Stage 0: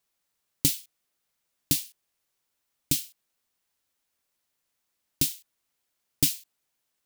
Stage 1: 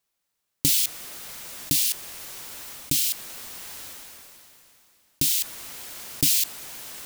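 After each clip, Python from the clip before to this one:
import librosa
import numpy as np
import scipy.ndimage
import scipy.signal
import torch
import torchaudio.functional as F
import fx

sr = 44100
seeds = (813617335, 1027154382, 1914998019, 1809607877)

y = fx.sustainer(x, sr, db_per_s=20.0)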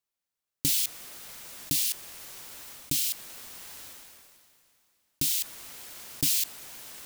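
y = fx.leveller(x, sr, passes=1)
y = y * librosa.db_to_amplitude(-8.0)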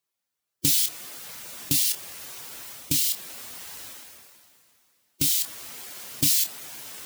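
y = fx.spec_quant(x, sr, step_db=15)
y = scipy.signal.sosfilt(scipy.signal.butter(2, 66.0, 'highpass', fs=sr, output='sos'), y)
y = fx.doubler(y, sr, ms=28.0, db=-9.5)
y = y * librosa.db_to_amplitude(4.5)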